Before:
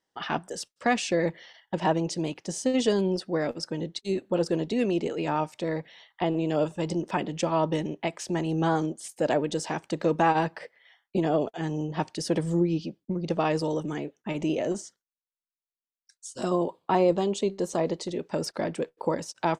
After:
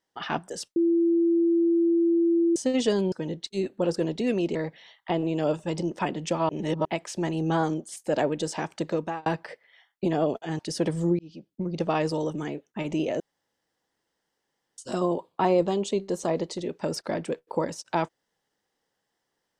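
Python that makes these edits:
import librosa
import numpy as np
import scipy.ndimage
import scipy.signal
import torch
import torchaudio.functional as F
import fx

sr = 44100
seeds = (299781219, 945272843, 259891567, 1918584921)

y = fx.edit(x, sr, fx.bleep(start_s=0.76, length_s=1.8, hz=337.0, db=-18.5),
    fx.cut(start_s=3.12, length_s=0.52),
    fx.cut(start_s=5.07, length_s=0.6),
    fx.reverse_span(start_s=7.61, length_s=0.36),
    fx.fade_out_span(start_s=9.95, length_s=0.43),
    fx.cut(start_s=11.71, length_s=0.38),
    fx.fade_in_span(start_s=12.69, length_s=0.47),
    fx.room_tone_fill(start_s=14.7, length_s=1.58), tone=tone)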